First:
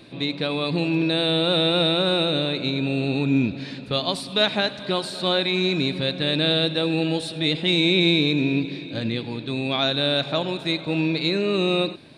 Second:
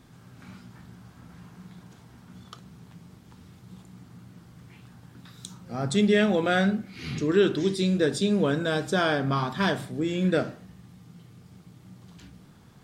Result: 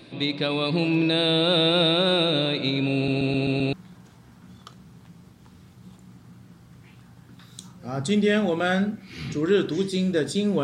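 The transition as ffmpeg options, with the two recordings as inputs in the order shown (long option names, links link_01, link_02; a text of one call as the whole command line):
ffmpeg -i cue0.wav -i cue1.wav -filter_complex "[0:a]apad=whole_dur=10.63,atrim=end=10.63,asplit=6[link_01][link_02][link_03][link_04][link_05][link_06];[link_01]atrim=end=3.082[link_07];[link_02]atrim=start=2.948:end=3.082[link_08];[link_03]atrim=start=2.948:end=3.082[link_09];[link_04]atrim=start=2.948:end=3.082[link_10];[link_05]atrim=start=2.948:end=3.082[link_11];[link_06]atrim=start=2.948:end=3.082[link_12];[1:a]atrim=start=1.588:end=8.49[link_13];[link_07][link_08]acrossfade=duration=0.004:curve1=hsin:curve2=hsin[link_14];[link_14][link_09]acrossfade=duration=0.004:curve1=hsin:curve2=hsin[link_15];[link_15][link_10]acrossfade=duration=0.004:curve1=hsin:curve2=hsin[link_16];[link_16][link_11]acrossfade=duration=0.004:curve1=hsin:curve2=hsin[link_17];[link_17][link_12]acrossfade=duration=0.004:curve1=hsin:curve2=hsin[link_18];[link_18][link_13]acrossfade=duration=0.004:curve1=hsin:curve2=hsin" out.wav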